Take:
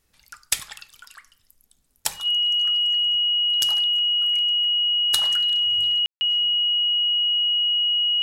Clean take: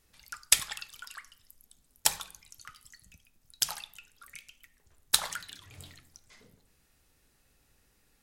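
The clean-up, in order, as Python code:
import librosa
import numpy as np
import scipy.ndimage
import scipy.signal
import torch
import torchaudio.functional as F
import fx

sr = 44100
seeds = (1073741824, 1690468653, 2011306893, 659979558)

y = fx.fix_declip(x, sr, threshold_db=-7.5)
y = fx.notch(y, sr, hz=2900.0, q=30.0)
y = fx.fix_ambience(y, sr, seeds[0], print_start_s=1.54, print_end_s=2.04, start_s=6.06, end_s=6.21)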